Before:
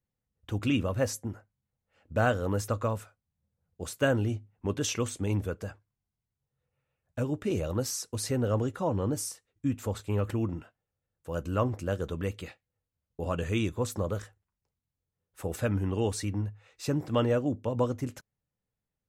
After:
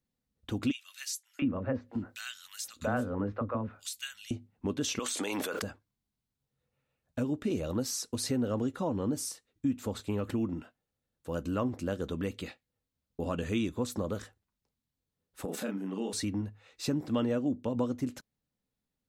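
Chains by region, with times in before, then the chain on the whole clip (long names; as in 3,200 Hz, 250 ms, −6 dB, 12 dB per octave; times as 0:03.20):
0:00.71–0:04.31: three-band delay without the direct sound highs, mids, lows 680/710 ms, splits 440/2,200 Hz + one half of a high-frequency compander encoder only
0:04.99–0:05.62: high-pass filter 710 Hz + envelope flattener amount 100%
0:15.45–0:16.13: double-tracking delay 31 ms −3.5 dB + downward compressor 5 to 1, threshold −31 dBFS + linear-phase brick-wall high-pass 160 Hz
whole clip: graphic EQ with 15 bands 100 Hz −5 dB, 250 Hz +8 dB, 4,000 Hz +5 dB; downward compressor 2 to 1, threshold −31 dBFS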